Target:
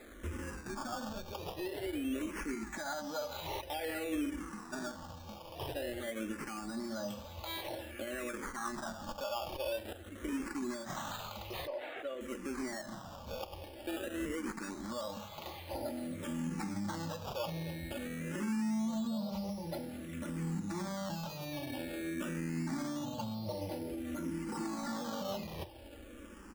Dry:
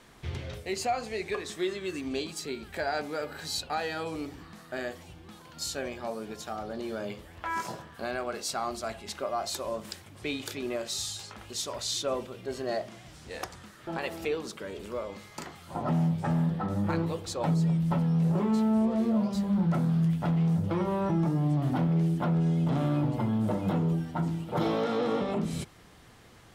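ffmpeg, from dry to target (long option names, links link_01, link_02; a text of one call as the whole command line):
ffmpeg -i in.wav -filter_complex "[0:a]aecho=1:1:3.5:0.8,acompressor=threshold=-31dB:ratio=3,alimiter=level_in=7dB:limit=-24dB:level=0:latency=1:release=136,volume=-7dB,acrusher=samples=15:mix=1:aa=0.000001:lfo=1:lforange=15:lforate=0.24,asettb=1/sr,asplit=3[link_01][link_02][link_03];[link_01]atrim=end=11.674[link_04];[link_02]atrim=start=11.67:end=12.21,asetpts=PTS-STARTPTS,afade=type=in:duration=0.004:curve=qsin,afade=type=out:start_time=0.536:duration=0.004:curve=qsin,highpass=430,lowpass=2300[link_05];[link_03]atrim=start=12.206[link_06];[link_04][link_05]acrossfade=duration=0.004:curve1=hsin:curve2=qsin[link_07];[link_07][link_06]acrossfade=duration=0.004:curve1=qsin:curve2=hsin,asplit=2[link_08][link_09];[link_09]aecho=0:1:1095:0.0891[link_10];[link_08][link_10]amix=inputs=2:normalize=0,asplit=2[link_11][link_12];[link_12]afreqshift=-0.5[link_13];[link_11][link_13]amix=inputs=2:normalize=1,volume=3.5dB" out.wav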